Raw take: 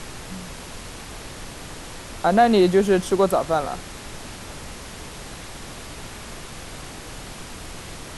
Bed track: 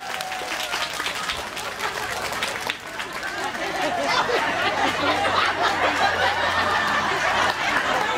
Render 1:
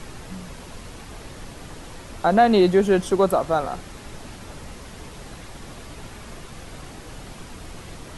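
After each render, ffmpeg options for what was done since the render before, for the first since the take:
-af "afftdn=nr=6:nf=-38"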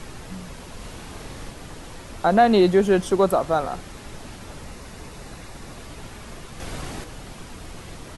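-filter_complex "[0:a]asplit=3[a][b][c];[a]afade=t=out:st=0.79:d=0.02[d];[b]asplit=2[e][f];[f]adelay=43,volume=-3dB[g];[e][g]amix=inputs=2:normalize=0,afade=t=in:st=0.79:d=0.02,afade=t=out:st=1.5:d=0.02[h];[c]afade=t=in:st=1.5:d=0.02[i];[d][h][i]amix=inputs=3:normalize=0,asettb=1/sr,asplit=3[j][k][l];[j]atrim=end=4.684[m];[k]atrim=start=4.68:end=5.78,asetpts=PTS-STARTPTS,afade=t=in:d=0.004:c=qsin,afade=t=out:st=1.096:d=0.004:c=qsin,bandreject=f=3.2k:w=12[n];[l]atrim=start=5.776[o];[m][n]acrossfade=d=0.004:c1=hsin:c2=qsin[p];[p][o]acrossfade=d=0.004:c1=qsin:c2=hsin,asplit=3[q][r][s];[q]atrim=end=6.602[t];[r]atrim=start=6.598:end=7.042,asetpts=PTS-STARTPTS,volume=6dB[u];[s]atrim=start=7.038[v];[t][u]acrossfade=d=0.004:c1=hsin:c2=hsin[w];[w][v]acrossfade=d=0.004:c1=hsin:c2=hsin"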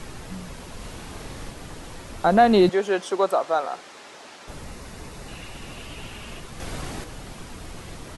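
-filter_complex "[0:a]asettb=1/sr,asplit=3[a][b][c];[a]atrim=end=2.694[d];[b]atrim=start=2.69:end=4.48,asetpts=PTS-STARTPTS,afade=t=in:d=0.004:c=qsin,afade=t=out:st=1.786:d=0.004:c=qsin,highpass=470,lowpass=7.4k[e];[c]atrim=start=4.476[f];[d][e]acrossfade=d=0.004:c1=hsin:c2=qsin[g];[g][f]acrossfade=d=0.004:c1=qsin:c2=hsin,asettb=1/sr,asplit=3[h][i][j];[h]atrim=end=5.284[k];[i]atrim=start=5.28:end=6.4,asetpts=PTS-STARTPTS,afade=t=in:d=0.004:c=qsin,afade=t=out:st=1.116:d=0.004:c=qsin,equalizer=f=2.8k:t=o:w=0.37:g=11.5[l];[j]atrim=start=6.396[m];[k][l]acrossfade=d=0.004:c1=hsin:c2=qsin[n];[n][m]acrossfade=d=0.004:c1=qsin:c2=hsin"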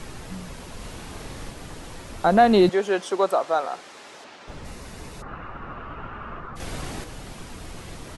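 -filter_complex "[0:a]asettb=1/sr,asplit=3[a][b][c];[a]atrim=end=4.244[d];[b]atrim=start=4.24:end=4.65,asetpts=PTS-STARTPTS,afade=t=in:d=0.004:c=qsin,afade=t=out:st=0.406:d=0.004:c=qsin,adynamicsmooth=sensitivity=4.5:basefreq=6.1k[e];[c]atrim=start=4.646[f];[d][e]acrossfade=d=0.004:c1=hsin:c2=qsin[g];[g][f]acrossfade=d=0.004:c1=qsin:c2=hsin,asplit=3[h][i][j];[h]afade=t=out:st=5.21:d=0.02[k];[i]lowpass=f=1.3k:t=q:w=4.4,afade=t=in:st=5.21:d=0.02,afade=t=out:st=6.55:d=0.02[l];[j]afade=t=in:st=6.55:d=0.02[m];[k][l][m]amix=inputs=3:normalize=0"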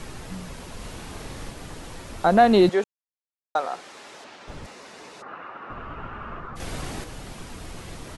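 -filter_complex "[0:a]asettb=1/sr,asplit=3[a][b][c];[a]atrim=end=4.664[d];[b]atrim=start=4.66:end=5.7,asetpts=PTS-STARTPTS,afade=t=in:d=0.004:c=qsin,afade=t=out:st=1.036:d=0.004:c=qsin,highpass=350,lowpass=6.9k[e];[c]atrim=start=5.696[f];[d][e]acrossfade=d=0.004:c1=hsin:c2=qsin[g];[g][f]acrossfade=d=0.004:c1=qsin:c2=hsin,asplit=3[h][i][j];[h]atrim=end=2.84,asetpts=PTS-STARTPTS,afade=t=out:st=2.836:d=0.004:c=hsin[k];[i]atrim=start=2.84:end=3.55,asetpts=PTS-STARTPTS,volume=0[l];[j]atrim=start=3.55,asetpts=PTS-STARTPTS,afade=t=in:d=0.004:c=hsin[m];[k][l][m]concat=n=3:v=0:a=1"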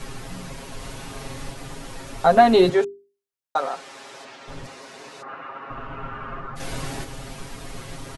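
-af "bandreject=f=50:t=h:w=6,bandreject=f=100:t=h:w=6,bandreject=f=150:t=h:w=6,bandreject=f=200:t=h:w=6,bandreject=f=250:t=h:w=6,bandreject=f=300:t=h:w=6,bandreject=f=350:t=h:w=6,bandreject=f=400:t=h:w=6,aecho=1:1:7.4:0.87"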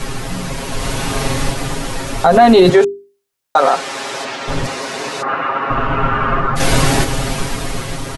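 -af "dynaudnorm=f=160:g=11:m=6dB,alimiter=level_in=12dB:limit=-1dB:release=50:level=0:latency=1"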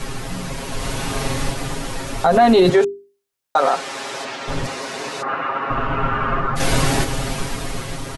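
-af "volume=-4.5dB"

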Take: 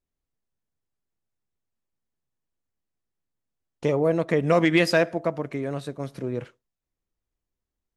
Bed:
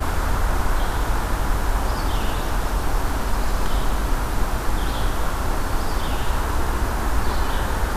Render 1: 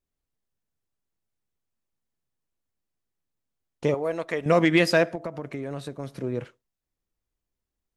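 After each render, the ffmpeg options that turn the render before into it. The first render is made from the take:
-filter_complex "[0:a]asettb=1/sr,asplit=3[a][b][c];[a]atrim=end=3.944[d];[b]atrim=start=3.94:end=4.46,asetpts=PTS-STARTPTS,afade=t=in:d=0.004:c=qsin,afade=t=out:st=0.516:d=0.004:c=qsin,equalizer=f=140:w=0.38:g=-14[e];[c]atrim=start=4.456[f];[d][e]acrossfade=d=0.004:c1=hsin:c2=qsin[g];[g][f]acrossfade=d=0.004:c1=qsin:c2=hsin,asettb=1/sr,asplit=3[h][i][j];[h]atrim=end=5.154[k];[i]atrim=start=5.15:end=6.11,asetpts=PTS-STARTPTS,afade=t=in:d=0.004:c=qsin,afade=t=out:st=0.956:d=0.004:c=qsin,acompressor=threshold=-28dB:ratio=6:attack=3.2:release=140:knee=1:detection=peak[l];[j]atrim=start=6.106[m];[k][l]acrossfade=d=0.004:c1=hsin:c2=qsin[n];[n][m]acrossfade=d=0.004:c1=qsin:c2=hsin"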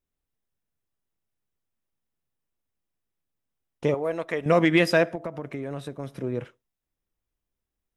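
-af "equalizer=f=6.8k:t=o:w=0.72:g=-4,bandreject=f=4.4k:w=7.8"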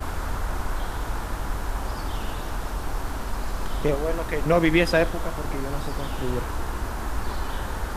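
-filter_complex "[1:a]volume=-7dB[a];[0:a][a]amix=inputs=2:normalize=0"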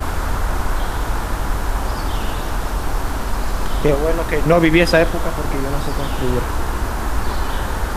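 -af "volume=8dB,alimiter=limit=-2dB:level=0:latency=1"

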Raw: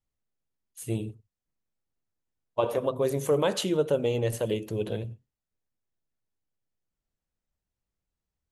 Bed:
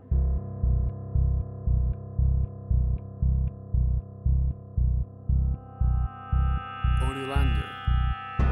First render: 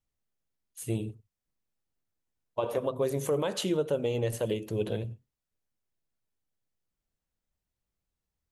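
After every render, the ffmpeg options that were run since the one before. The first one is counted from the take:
-af "alimiter=limit=-18.5dB:level=0:latency=1:release=256"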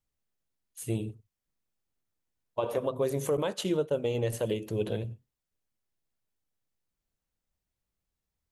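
-filter_complex "[0:a]asettb=1/sr,asplit=3[a][b][c];[a]atrim=end=3.374[d];[b]atrim=start=3.37:end=4.15,asetpts=PTS-STARTPTS,afade=t=in:d=0.004:c=qsin,afade=t=out:st=0.776:d=0.004:c=qsin,agate=range=-33dB:threshold=-31dB:ratio=3:release=100:detection=peak[e];[c]atrim=start=4.146[f];[d][e]acrossfade=d=0.004:c1=hsin:c2=qsin[g];[g][f]acrossfade=d=0.004:c1=qsin:c2=hsin"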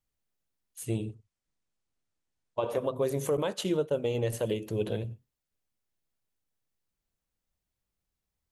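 -filter_complex "[0:a]asettb=1/sr,asplit=3[a][b][c];[a]atrim=end=0.854[d];[b]atrim=start=0.85:end=2.72,asetpts=PTS-STARTPTS,afade=t=in:d=0.004:c=qsin,afade=t=out:st=1.866:d=0.004:c=qsin,lowpass=f=9.5k:w=0.5412,lowpass=f=9.5k:w=1.3066[e];[c]atrim=start=2.716[f];[d][e]acrossfade=d=0.004:c1=hsin:c2=qsin[g];[g][f]acrossfade=d=0.004:c1=qsin:c2=hsin"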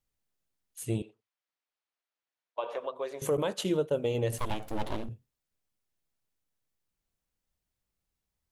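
-filter_complex "[0:a]asettb=1/sr,asplit=3[a][b][c];[a]atrim=end=1.024[d];[b]atrim=start=1.02:end=3.22,asetpts=PTS-STARTPTS,afade=t=in:d=0.004:c=qsin,afade=t=out:st=2.196:d=0.004:c=qsin,highpass=670,lowpass=4k[e];[c]atrim=start=3.216[f];[d][e]acrossfade=d=0.004:c1=hsin:c2=qsin[g];[g][f]acrossfade=d=0.004:c1=qsin:c2=hsin,asettb=1/sr,asplit=3[h][i][j];[h]atrim=end=4.384[k];[i]atrim=start=4.38:end=5.09,asetpts=PTS-STARTPTS,afade=t=in:d=0.004:c=qsin,afade=t=out:st=0.706:d=0.004:c=qsin,aeval=exprs='abs(val(0))':c=same[l];[j]atrim=start=5.086[m];[k][l]acrossfade=d=0.004:c1=hsin:c2=qsin[n];[n][m]acrossfade=d=0.004:c1=qsin:c2=hsin"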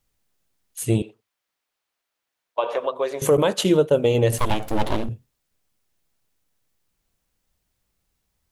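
-af "volume=11dB"

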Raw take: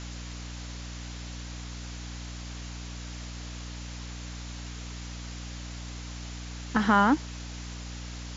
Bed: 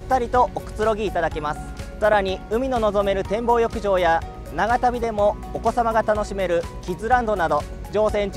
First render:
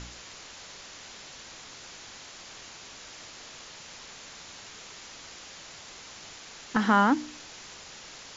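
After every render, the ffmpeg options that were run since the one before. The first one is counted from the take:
-af "bandreject=f=60:t=h:w=4,bandreject=f=120:t=h:w=4,bandreject=f=180:t=h:w=4,bandreject=f=240:t=h:w=4,bandreject=f=300:t=h:w=4"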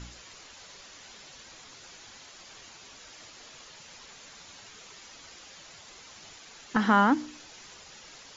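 -af "afftdn=nr=7:nf=-47"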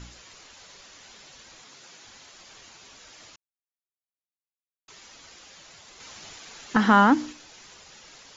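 -filter_complex "[0:a]asettb=1/sr,asplit=3[a][b][c];[a]atrim=end=1.644[d];[b]atrim=start=1.64:end=2.05,asetpts=PTS-STARTPTS,afade=t=in:d=0.004:c=qsin,afade=t=out:st=0.406:d=0.004:c=qsin,highpass=f=120:w=0.5412,highpass=f=120:w=1.3066[e];[c]atrim=start=2.046[f];[d][e]acrossfade=d=0.004:c1=hsin:c2=qsin[g];[g][f]acrossfade=d=0.004:c1=qsin:c2=hsin,asettb=1/sr,asplit=3[h][i][j];[h]atrim=end=6.004[k];[i]atrim=start=6:end=7.33,asetpts=PTS-STARTPTS,afade=t=in:d=0.004:c=qsin,afade=t=out:st=1.326:d=0.004:c=qsin,acontrast=20[l];[j]atrim=start=7.326[m];[k][l]acrossfade=d=0.004:c1=hsin:c2=qsin[n];[n][m]acrossfade=d=0.004:c1=qsin:c2=hsin,asplit=3[o][p][q];[o]atrim=end=3.36,asetpts=PTS-STARTPTS,afade=t=out:st=3.356:d=0.004:c=hsin[r];[p]atrim=start=3.36:end=4.88,asetpts=PTS-STARTPTS,volume=0[s];[q]atrim=start=4.88,asetpts=PTS-STARTPTS,afade=t=in:d=0.004:c=hsin[t];[r][s][t]concat=n=3:v=0:a=1"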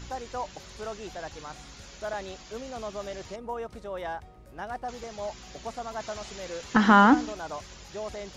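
-filter_complex "[1:a]volume=-16.5dB[a];[0:a][a]amix=inputs=2:normalize=0"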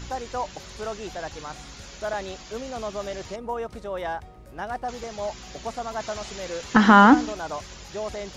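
-af "volume=4.5dB,alimiter=limit=-2dB:level=0:latency=1"

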